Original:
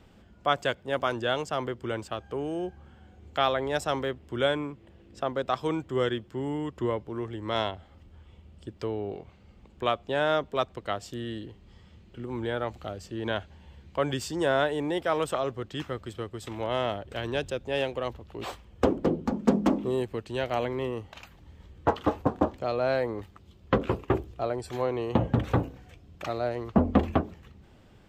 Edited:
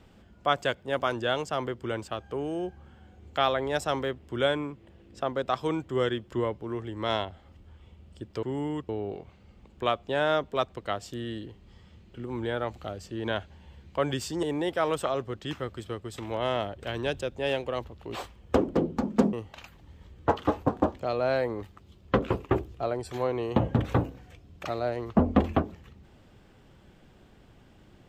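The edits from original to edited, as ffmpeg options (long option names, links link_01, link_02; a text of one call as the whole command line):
ffmpeg -i in.wav -filter_complex "[0:a]asplit=6[link_01][link_02][link_03][link_04][link_05][link_06];[link_01]atrim=end=6.322[link_07];[link_02]atrim=start=6.778:end=8.892[link_08];[link_03]atrim=start=6.318:end=6.782[link_09];[link_04]atrim=start=8.888:end=14.432[link_10];[link_05]atrim=start=14.718:end=19.622[link_11];[link_06]atrim=start=20.918[link_12];[link_07][link_08]acrossfade=duration=0.004:curve1=hsin:curve2=hsin[link_13];[link_13][link_09]acrossfade=duration=0.004:curve1=hsin:curve2=hsin[link_14];[link_14][link_10]acrossfade=duration=0.004:curve1=hsin:curve2=hsin[link_15];[link_15][link_11]acrossfade=duration=0.004:curve1=hsin:curve2=hsin[link_16];[link_16][link_12]acrossfade=duration=0.004:curve1=hsin:curve2=hsin" out.wav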